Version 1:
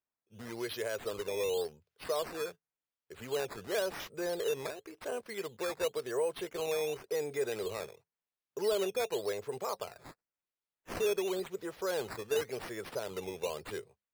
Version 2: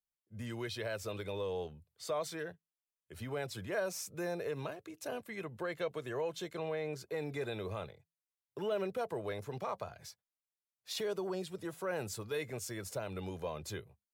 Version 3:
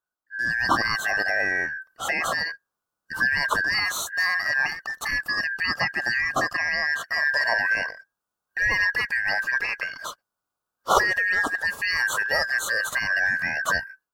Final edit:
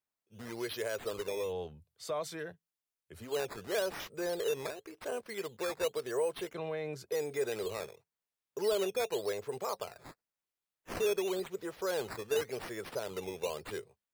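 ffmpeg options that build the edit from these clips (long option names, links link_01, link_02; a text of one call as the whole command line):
ffmpeg -i take0.wav -i take1.wav -filter_complex "[1:a]asplit=2[link_01][link_02];[0:a]asplit=3[link_03][link_04][link_05];[link_03]atrim=end=1.54[link_06];[link_01]atrim=start=1.3:end=3.37[link_07];[link_04]atrim=start=3.13:end=6.542[link_08];[link_02]atrim=start=6.538:end=7.122[link_09];[link_05]atrim=start=7.118[link_10];[link_06][link_07]acrossfade=duration=0.24:curve1=tri:curve2=tri[link_11];[link_11][link_08]acrossfade=duration=0.24:curve1=tri:curve2=tri[link_12];[link_12][link_09]acrossfade=duration=0.004:curve1=hsin:curve2=hsin[link_13];[link_13][link_10]acrossfade=duration=0.004:curve1=hsin:curve2=hsin" out.wav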